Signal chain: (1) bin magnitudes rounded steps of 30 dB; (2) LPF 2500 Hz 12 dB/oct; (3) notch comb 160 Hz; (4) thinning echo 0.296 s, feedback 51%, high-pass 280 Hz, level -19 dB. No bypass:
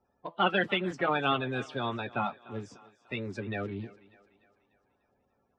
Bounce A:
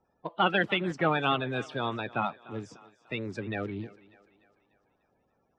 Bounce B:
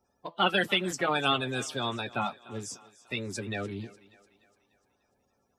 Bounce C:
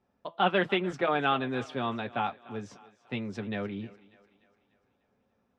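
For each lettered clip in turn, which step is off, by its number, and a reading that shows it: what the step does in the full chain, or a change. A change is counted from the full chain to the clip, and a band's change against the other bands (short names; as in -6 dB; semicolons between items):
3, loudness change +1.5 LU; 2, 8 kHz band +18.5 dB; 1, 125 Hz band -2.0 dB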